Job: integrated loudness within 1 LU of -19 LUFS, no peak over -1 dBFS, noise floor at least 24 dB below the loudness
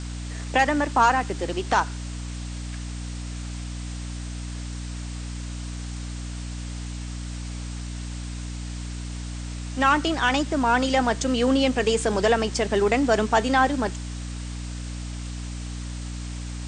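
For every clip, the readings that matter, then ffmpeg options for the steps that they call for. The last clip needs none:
hum 60 Hz; harmonics up to 300 Hz; hum level -30 dBFS; noise floor -33 dBFS; noise floor target -50 dBFS; loudness -26.0 LUFS; peak -7.0 dBFS; loudness target -19.0 LUFS
-> -af "bandreject=f=60:t=h:w=4,bandreject=f=120:t=h:w=4,bandreject=f=180:t=h:w=4,bandreject=f=240:t=h:w=4,bandreject=f=300:t=h:w=4"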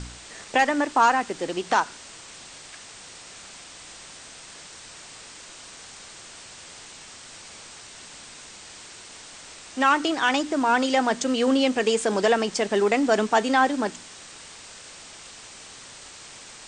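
hum none; noise floor -44 dBFS; noise floor target -47 dBFS
-> -af "afftdn=nr=6:nf=-44"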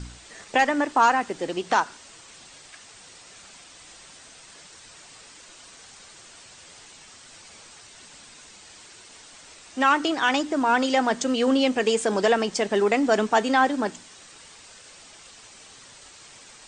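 noise floor -48 dBFS; loudness -22.5 LUFS; peak -8.0 dBFS; loudness target -19.0 LUFS
-> -af "volume=3.5dB"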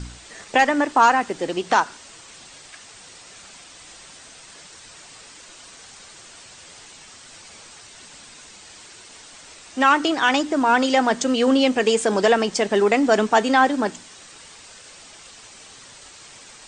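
loudness -19.0 LUFS; peak -4.5 dBFS; noise floor -45 dBFS

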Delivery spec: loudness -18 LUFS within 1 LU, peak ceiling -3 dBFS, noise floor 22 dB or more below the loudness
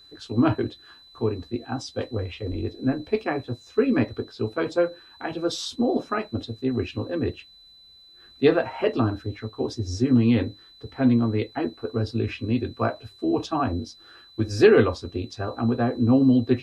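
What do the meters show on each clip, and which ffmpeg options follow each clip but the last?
steady tone 4000 Hz; tone level -49 dBFS; loudness -25.0 LUFS; peak -5.0 dBFS; loudness target -18.0 LUFS
-> -af "bandreject=f=4k:w=30"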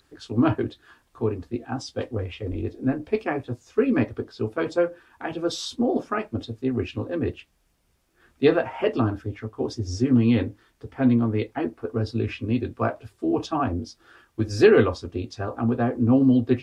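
steady tone none; loudness -25.0 LUFS; peak -5.0 dBFS; loudness target -18.0 LUFS
-> -af "volume=7dB,alimiter=limit=-3dB:level=0:latency=1"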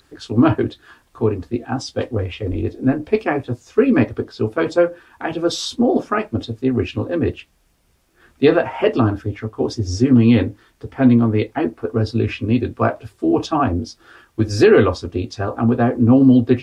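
loudness -18.5 LUFS; peak -3.0 dBFS; noise floor -60 dBFS

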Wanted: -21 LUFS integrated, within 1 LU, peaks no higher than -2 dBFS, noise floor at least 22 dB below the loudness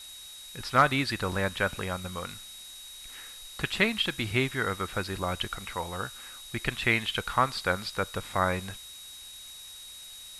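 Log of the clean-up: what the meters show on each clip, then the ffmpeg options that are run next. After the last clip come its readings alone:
steady tone 3800 Hz; tone level -45 dBFS; noise floor -46 dBFS; noise floor target -51 dBFS; loudness -29.0 LUFS; peak -9.0 dBFS; loudness target -21.0 LUFS
-> -af "bandreject=f=3.8k:w=30"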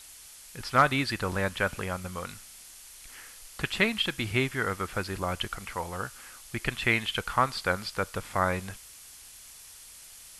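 steady tone none; noise floor -49 dBFS; noise floor target -52 dBFS
-> -af "afftdn=nr=6:nf=-49"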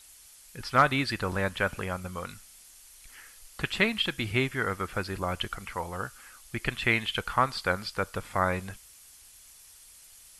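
noise floor -54 dBFS; loudness -29.5 LUFS; peak -9.0 dBFS; loudness target -21.0 LUFS
-> -af "volume=8.5dB,alimiter=limit=-2dB:level=0:latency=1"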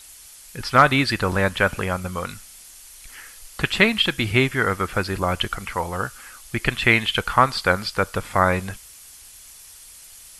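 loudness -21.0 LUFS; peak -2.0 dBFS; noise floor -45 dBFS

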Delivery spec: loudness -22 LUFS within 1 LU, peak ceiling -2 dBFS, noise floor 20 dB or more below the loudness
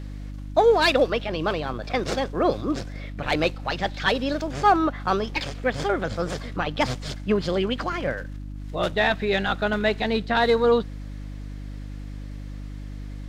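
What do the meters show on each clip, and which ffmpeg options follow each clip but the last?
hum 50 Hz; harmonics up to 300 Hz; hum level -32 dBFS; loudness -24.0 LUFS; peak -6.5 dBFS; loudness target -22.0 LUFS
-> -af "bandreject=f=50:t=h:w=4,bandreject=f=100:t=h:w=4,bandreject=f=150:t=h:w=4,bandreject=f=200:t=h:w=4,bandreject=f=250:t=h:w=4,bandreject=f=300:t=h:w=4"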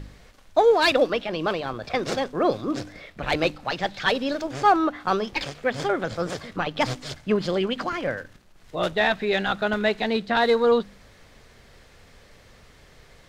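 hum none; loudness -24.0 LUFS; peak -6.5 dBFS; loudness target -22.0 LUFS
-> -af "volume=2dB"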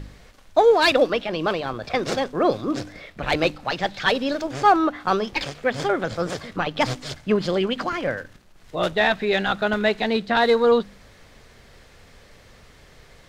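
loudness -22.0 LUFS; peak -4.5 dBFS; noise floor -51 dBFS

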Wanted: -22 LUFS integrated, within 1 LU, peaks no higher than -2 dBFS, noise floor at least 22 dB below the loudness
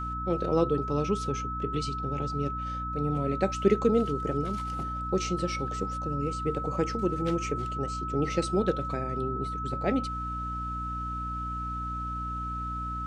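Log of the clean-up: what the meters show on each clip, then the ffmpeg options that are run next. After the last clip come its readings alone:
hum 60 Hz; harmonics up to 300 Hz; hum level -35 dBFS; steady tone 1300 Hz; tone level -33 dBFS; loudness -30.0 LUFS; peak -9.5 dBFS; loudness target -22.0 LUFS
-> -af "bandreject=f=60:t=h:w=6,bandreject=f=120:t=h:w=6,bandreject=f=180:t=h:w=6,bandreject=f=240:t=h:w=6,bandreject=f=300:t=h:w=6"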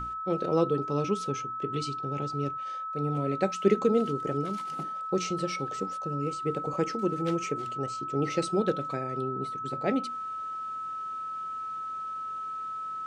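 hum none; steady tone 1300 Hz; tone level -33 dBFS
-> -af "bandreject=f=1.3k:w=30"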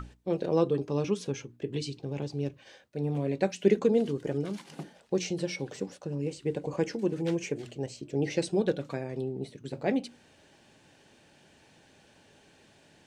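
steady tone none; loudness -31.5 LUFS; peak -10.5 dBFS; loudness target -22.0 LUFS
-> -af "volume=9.5dB,alimiter=limit=-2dB:level=0:latency=1"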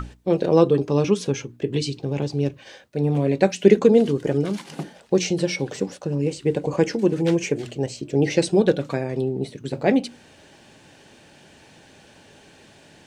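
loudness -22.0 LUFS; peak -2.0 dBFS; noise floor -51 dBFS

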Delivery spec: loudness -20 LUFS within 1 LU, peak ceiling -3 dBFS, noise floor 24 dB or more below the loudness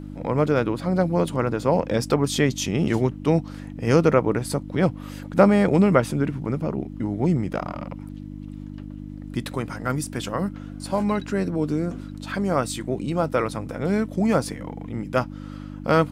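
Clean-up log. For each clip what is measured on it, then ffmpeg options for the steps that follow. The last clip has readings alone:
hum 50 Hz; harmonics up to 300 Hz; hum level -33 dBFS; loudness -23.5 LUFS; peak -2.5 dBFS; loudness target -20.0 LUFS
-> -af "bandreject=f=50:t=h:w=4,bandreject=f=100:t=h:w=4,bandreject=f=150:t=h:w=4,bandreject=f=200:t=h:w=4,bandreject=f=250:t=h:w=4,bandreject=f=300:t=h:w=4"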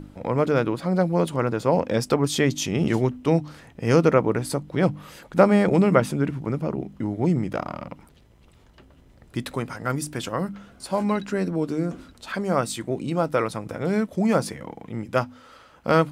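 hum none; loudness -24.0 LUFS; peak -2.5 dBFS; loudness target -20.0 LUFS
-> -af "volume=4dB,alimiter=limit=-3dB:level=0:latency=1"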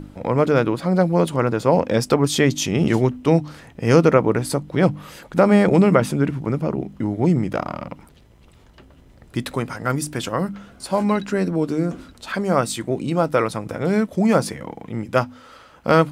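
loudness -20.0 LUFS; peak -3.0 dBFS; noise floor -50 dBFS

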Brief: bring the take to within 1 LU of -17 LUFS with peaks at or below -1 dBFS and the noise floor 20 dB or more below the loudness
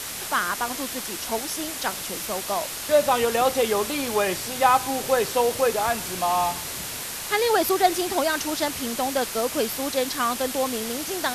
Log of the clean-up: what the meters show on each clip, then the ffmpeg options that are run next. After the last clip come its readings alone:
noise floor -33 dBFS; noise floor target -44 dBFS; loudness -24.0 LUFS; peak -5.0 dBFS; loudness target -17.0 LUFS
-> -af "afftdn=nr=11:nf=-33"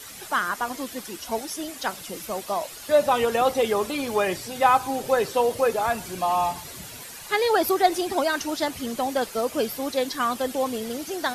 noise floor -41 dBFS; noise floor target -45 dBFS
-> -af "afftdn=nr=6:nf=-41"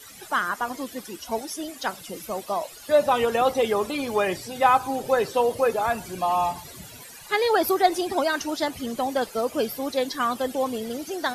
noise floor -44 dBFS; noise floor target -45 dBFS
-> -af "afftdn=nr=6:nf=-44"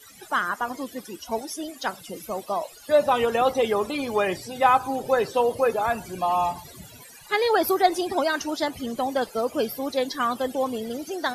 noise floor -47 dBFS; loudness -25.0 LUFS; peak -5.5 dBFS; loudness target -17.0 LUFS
-> -af "volume=8dB,alimiter=limit=-1dB:level=0:latency=1"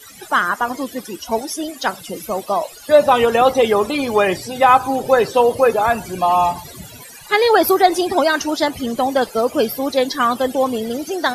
loudness -17.0 LUFS; peak -1.0 dBFS; noise floor -39 dBFS

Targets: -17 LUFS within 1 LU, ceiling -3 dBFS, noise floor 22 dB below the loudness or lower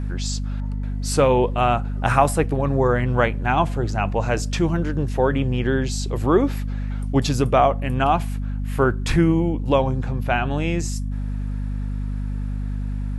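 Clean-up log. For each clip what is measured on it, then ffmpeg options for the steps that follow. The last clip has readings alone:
hum 50 Hz; harmonics up to 250 Hz; hum level -23 dBFS; loudness -22.0 LUFS; peak -2.5 dBFS; loudness target -17.0 LUFS
-> -af "bandreject=f=50:t=h:w=4,bandreject=f=100:t=h:w=4,bandreject=f=150:t=h:w=4,bandreject=f=200:t=h:w=4,bandreject=f=250:t=h:w=4"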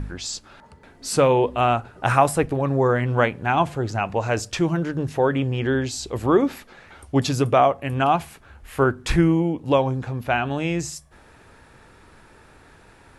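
hum none; loudness -22.0 LUFS; peak -3.0 dBFS; loudness target -17.0 LUFS
-> -af "volume=5dB,alimiter=limit=-3dB:level=0:latency=1"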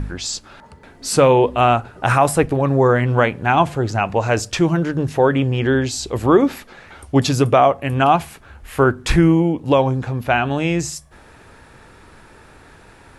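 loudness -17.5 LUFS; peak -3.0 dBFS; noise floor -46 dBFS

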